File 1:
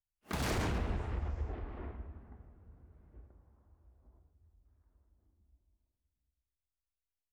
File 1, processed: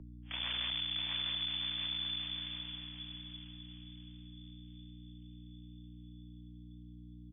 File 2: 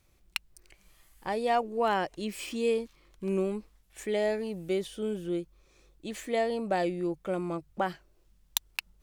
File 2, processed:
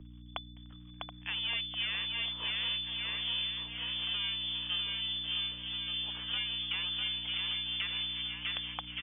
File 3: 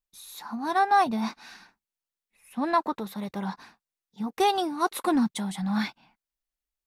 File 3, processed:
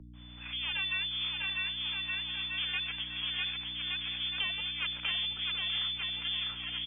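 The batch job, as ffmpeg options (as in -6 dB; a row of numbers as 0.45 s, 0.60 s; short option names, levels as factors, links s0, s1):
-filter_complex "[0:a]aeval=exprs='max(val(0),0)':c=same,lowpass=f=3000:t=q:w=0.5098,lowpass=f=3000:t=q:w=0.6013,lowpass=f=3000:t=q:w=0.9,lowpass=f=3000:t=q:w=2.563,afreqshift=-3500,asplit=2[s0][s1];[s1]aecho=0:1:650|1170|1586|1919|2185:0.631|0.398|0.251|0.158|0.1[s2];[s0][s2]amix=inputs=2:normalize=0,aeval=exprs='val(0)+0.00708*(sin(2*PI*60*n/s)+sin(2*PI*2*60*n/s)/2+sin(2*PI*3*60*n/s)/3+sin(2*PI*4*60*n/s)/4+sin(2*PI*5*60*n/s)/5)':c=same,acrossover=split=89|260[s3][s4][s5];[s3]acompressor=threshold=0.002:ratio=4[s6];[s4]acompressor=threshold=0.00178:ratio=4[s7];[s5]acompressor=threshold=0.0251:ratio=4[s8];[s6][s7][s8]amix=inputs=3:normalize=0,asplit=2[s9][s10];[s10]adelay=727,lowpass=f=1500:p=1,volume=0.398,asplit=2[s11][s12];[s12]adelay=727,lowpass=f=1500:p=1,volume=0.28,asplit=2[s13][s14];[s14]adelay=727,lowpass=f=1500:p=1,volume=0.28[s15];[s11][s13][s15]amix=inputs=3:normalize=0[s16];[s9][s16]amix=inputs=2:normalize=0"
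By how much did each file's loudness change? +2.0 LU, -1.0 LU, -5.0 LU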